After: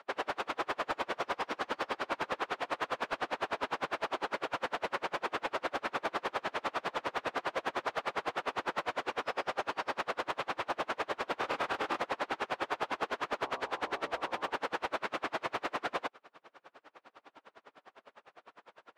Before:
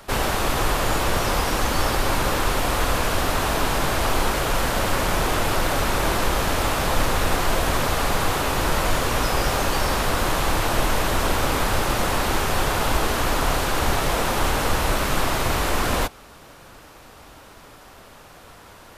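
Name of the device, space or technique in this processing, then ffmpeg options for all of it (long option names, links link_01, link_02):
helicopter radio: -filter_complex "[0:a]highpass=380,lowpass=2800,aeval=exprs='val(0)*pow(10,-35*(0.5-0.5*cos(2*PI*9.9*n/s))/20)':channel_layout=same,asoftclip=type=hard:threshold=-22dB,asettb=1/sr,asplit=3[link_01][link_02][link_03];[link_01]atrim=end=11.394[link_04];[link_02]atrim=start=11.39:end=12.01,asetpts=PTS-STARTPTS,afade=type=in:duration=0.004:curve=qsin,afade=type=out:start_time=0.616:duration=0.004:curve=qsin,asplit=2[link_05][link_06];[link_06]adelay=26,volume=-3.5dB[link_07];[link_05][link_07]amix=inputs=2:normalize=0,atrim=end_sample=27342[link_08];[link_03]atrim=start=12.006[link_09];[link_04][link_08]acrossfade=duration=0.004:curve1=hsin:curve2=qsin[link_10];[link_10][link_09]acrossfade=duration=0.004:curve1=qsin:curve2=hsin,asplit=3[link_11][link_12][link_13];[link_11]afade=type=out:start_time=13.44:duration=0.02[link_14];[link_12]bandreject=frequency=64.34:width_type=h:width=4,bandreject=frequency=128.68:width_type=h:width=4,bandreject=frequency=193.02:width_type=h:width=4,bandreject=frequency=257.36:width_type=h:width=4,bandreject=frequency=321.7:width_type=h:width=4,bandreject=frequency=386.04:width_type=h:width=4,bandreject=frequency=450.38:width_type=h:width=4,bandreject=frequency=514.72:width_type=h:width=4,bandreject=frequency=579.06:width_type=h:width=4,bandreject=frequency=643.4:width_type=h:width=4,bandreject=frequency=707.74:width_type=h:width=4,bandreject=frequency=772.08:width_type=h:width=4,bandreject=frequency=836.42:width_type=h:width=4,bandreject=frequency=900.76:width_type=h:width=4,bandreject=frequency=965.1:width_type=h:width=4,bandreject=frequency=1029.44:width_type=h:width=4,bandreject=frequency=1093.78:width_type=h:width=4,bandreject=frequency=1158.12:width_type=h:width=4,afade=type=in:start_time=13.44:duration=0.02,afade=type=out:start_time=14.49:duration=0.02[link_15];[link_13]afade=type=in:start_time=14.49:duration=0.02[link_16];[link_14][link_15][link_16]amix=inputs=3:normalize=0,volume=-3.5dB"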